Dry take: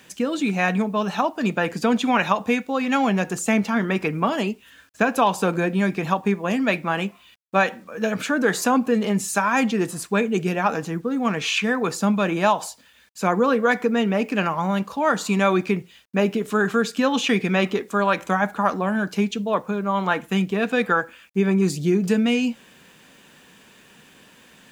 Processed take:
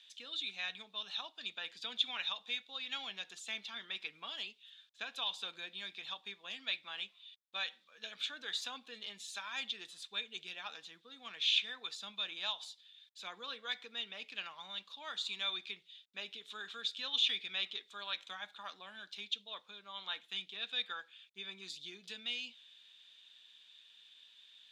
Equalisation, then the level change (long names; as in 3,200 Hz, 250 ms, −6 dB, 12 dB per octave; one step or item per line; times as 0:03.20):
resonant band-pass 3,600 Hz, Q 9.2
+3.0 dB